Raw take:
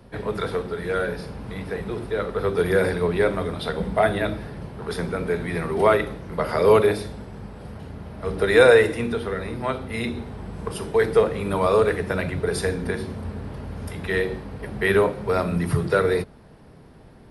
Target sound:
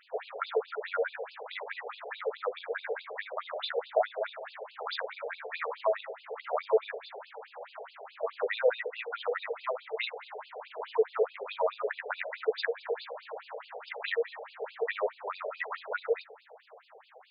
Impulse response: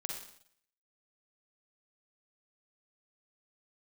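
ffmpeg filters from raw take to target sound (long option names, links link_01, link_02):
-filter_complex "[0:a]acrossover=split=320[link_01][link_02];[link_02]acompressor=threshold=-30dB:ratio=8[link_03];[link_01][link_03]amix=inputs=2:normalize=0,asplit=2[link_04][link_05];[1:a]atrim=start_sample=2205,adelay=140[link_06];[link_05][link_06]afir=irnorm=-1:irlink=0,volume=-20dB[link_07];[link_04][link_07]amix=inputs=2:normalize=0,afftfilt=real='re*between(b*sr/1024,560*pow(3600/560,0.5+0.5*sin(2*PI*4.7*pts/sr))/1.41,560*pow(3600/560,0.5+0.5*sin(2*PI*4.7*pts/sr))*1.41)':imag='im*between(b*sr/1024,560*pow(3600/560,0.5+0.5*sin(2*PI*4.7*pts/sr))/1.41,560*pow(3600/560,0.5+0.5*sin(2*PI*4.7*pts/sr))*1.41)':win_size=1024:overlap=0.75,volume=6dB"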